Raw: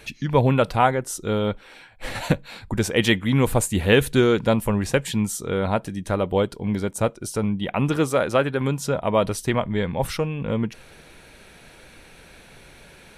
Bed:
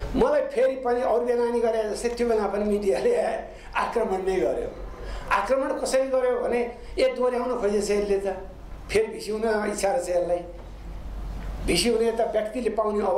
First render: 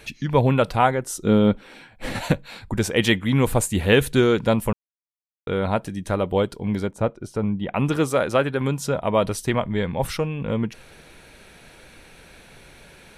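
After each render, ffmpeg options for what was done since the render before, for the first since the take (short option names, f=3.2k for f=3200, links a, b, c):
-filter_complex "[0:a]asettb=1/sr,asplit=3[a][b][c];[a]atrim=end=1.244[d];[b]atrim=start=1.24:end=2.19,asetpts=PTS-STARTPTS,afade=t=in:d=0.004:c=qsin,afade=t=out:st=0.946:d=0.004:c=qsin,equalizer=f=220:t=o:w=1.6:g=10[e];[c]atrim=start=2.186[f];[d][e]acrossfade=d=0.004:c1=hsin:c2=qsin[g];[g][f]acrossfade=d=0.004:c1=qsin:c2=hsin,asplit=3[h][i][j];[h]afade=t=out:st=6.86:d=0.02[k];[i]lowpass=f=1.5k:p=1,afade=t=in:st=6.86:d=0.02,afade=t=out:st=7.73:d=0.02[l];[j]afade=t=in:st=7.73:d=0.02[m];[k][l][m]amix=inputs=3:normalize=0,asplit=3[n][o][p];[n]atrim=end=4.73,asetpts=PTS-STARTPTS,afade=t=out:st=4.726:d=0.004:c=hsin[q];[o]atrim=start=4.73:end=5.47,asetpts=PTS-STARTPTS,volume=0[r];[p]atrim=start=5.47,asetpts=PTS-STARTPTS,afade=t=in:d=0.004:c=hsin[s];[q][r][s]concat=n=3:v=0:a=1"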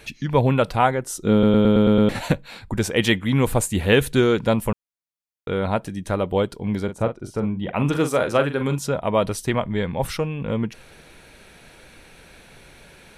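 -filter_complex "[0:a]asettb=1/sr,asplit=3[a][b][c];[a]atrim=end=6.844[d];[b]atrim=start=6.84:end=8.79,asetpts=PTS-STARTPTS,afade=t=in:d=0.004:c=qsin,afade=t=out:st=1.946:d=0.004:c=qsin,asplit=2[e][f];[f]adelay=42,volume=-9dB[g];[e][g]amix=inputs=2:normalize=0,atrim=end_sample=85995[h];[c]atrim=start=8.786[i];[d][h]acrossfade=d=0.004:c1=hsin:c2=qsin[j];[j][i]acrossfade=d=0.004:c1=qsin:c2=hsin,asplit=8[k][l][m][n][o][p][q][r];[k]atrim=end=1.432[s];[l]atrim=start=1.318:end=1.432[t];[m]atrim=start=1.318:end=1.432[u];[n]atrim=start=1.318:end=1.432[v];[o]atrim=start=1.318:end=1.432[w];[p]atrim=start=1.318:end=1.432[x];[q]atrim=start=1.318:end=1.432[y];[r]atrim=start=2.088[z];[s][t]acrossfade=d=0.004:c1=hsin:c2=hsin[aa];[aa][u]acrossfade=d=0.004:c1=hsin:c2=hsin[ab];[ab][v]acrossfade=d=0.004:c1=hsin:c2=hsin[ac];[ac][w]acrossfade=d=0.004:c1=hsin:c2=hsin[ad];[ad][x]acrossfade=d=0.004:c1=hsin:c2=hsin[ae];[ae][y]acrossfade=d=0.004:c1=hsin:c2=hsin[af];[af][z]acrossfade=d=0.004:c1=hsin:c2=hsin"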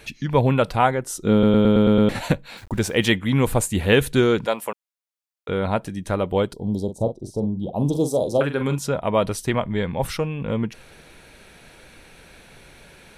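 -filter_complex "[0:a]asettb=1/sr,asplit=3[a][b][c];[a]atrim=end=2.574[d];[b]atrim=start=2.57:end=3.06,asetpts=PTS-STARTPTS,afade=t=in:d=0.004:c=qsin,afade=t=out:st=0.486:d=0.004:c=qsin,aeval=exprs='val(0)*gte(abs(val(0)),0.00708)':c=same[e];[c]atrim=start=3.056[f];[d][e]acrossfade=d=0.004:c1=hsin:c2=qsin[g];[g][f]acrossfade=d=0.004:c1=qsin:c2=hsin,asettb=1/sr,asplit=3[h][i][j];[h]atrim=end=4.464[k];[i]atrim=start=4.46:end=5.49,asetpts=PTS-STARTPTS,afade=t=in:d=0.004:c=qsin,afade=t=out:st=1.026:d=0.004:c=qsin,highpass=500[l];[j]atrim=start=5.486[m];[k][l]acrossfade=d=0.004:c1=hsin:c2=qsin[n];[n][m]acrossfade=d=0.004:c1=qsin:c2=hsin,asettb=1/sr,asplit=3[o][p][q];[o]atrim=end=6.534[r];[p]atrim=start=6.53:end=8.41,asetpts=PTS-STARTPTS,afade=t=in:d=0.004:c=qsin,afade=t=out:st=1.876:d=0.004:c=qsin,asuperstop=centerf=1800:order=8:qfactor=0.62[s];[q]atrim=start=8.406[t];[r][s]acrossfade=d=0.004:c1=hsin:c2=qsin[u];[u][t]acrossfade=d=0.004:c1=qsin:c2=hsin"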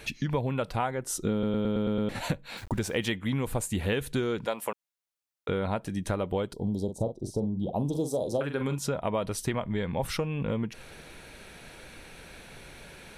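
-af "acompressor=threshold=-26dB:ratio=6"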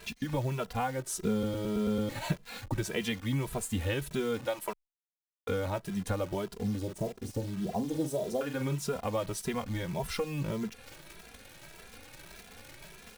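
-filter_complex "[0:a]acrusher=bits=8:dc=4:mix=0:aa=0.000001,asplit=2[a][b];[b]adelay=2.6,afreqshift=1.7[c];[a][c]amix=inputs=2:normalize=1"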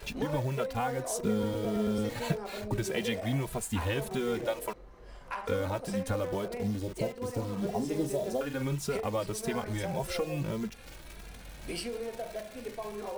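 -filter_complex "[1:a]volume=-15dB[a];[0:a][a]amix=inputs=2:normalize=0"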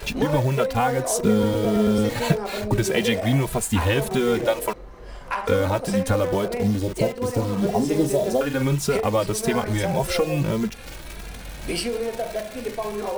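-af "volume=10.5dB"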